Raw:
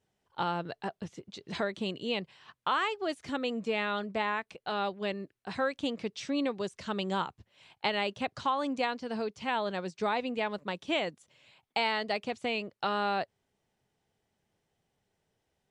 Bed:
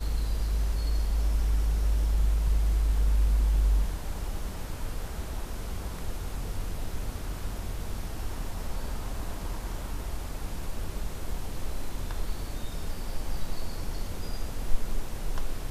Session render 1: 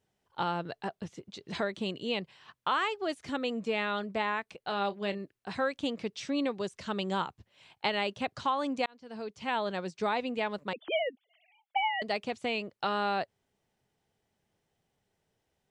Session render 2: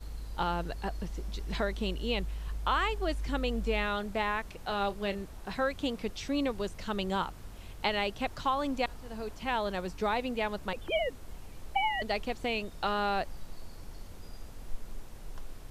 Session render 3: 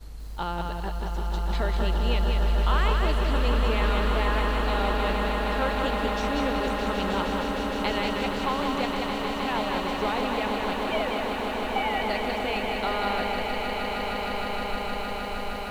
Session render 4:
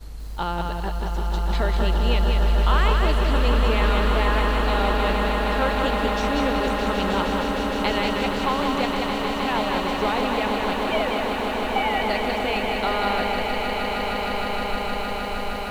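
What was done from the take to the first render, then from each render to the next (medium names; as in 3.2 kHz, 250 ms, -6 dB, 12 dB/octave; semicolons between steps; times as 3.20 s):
4.67–5.18 s: doubling 30 ms -13 dB; 8.86–9.54 s: fade in; 10.73–12.02 s: formants replaced by sine waves
add bed -12 dB
on a send: echo with a slow build-up 155 ms, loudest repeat 8, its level -9 dB; on the sum: bit-crushed delay 190 ms, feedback 35%, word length 9-bit, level -4 dB
trim +4 dB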